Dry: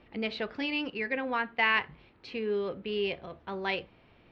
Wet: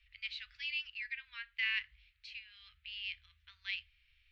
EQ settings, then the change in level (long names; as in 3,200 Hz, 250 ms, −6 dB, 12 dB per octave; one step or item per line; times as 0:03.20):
inverse Chebyshev band-stop filter 210–660 Hz, stop band 70 dB
−3.5 dB